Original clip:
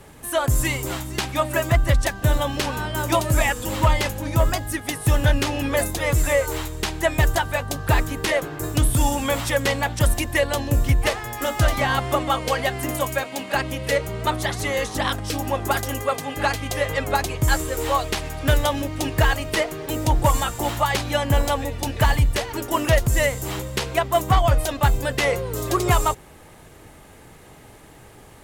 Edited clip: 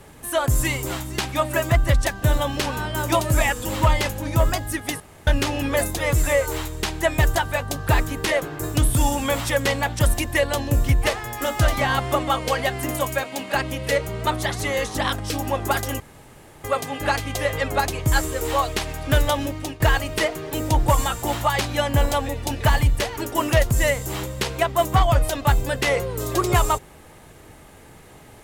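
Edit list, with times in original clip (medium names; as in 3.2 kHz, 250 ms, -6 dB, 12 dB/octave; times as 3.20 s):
5.00–5.27 s: room tone
16.00 s: insert room tone 0.64 s
18.75–19.16 s: fade out equal-power, to -15.5 dB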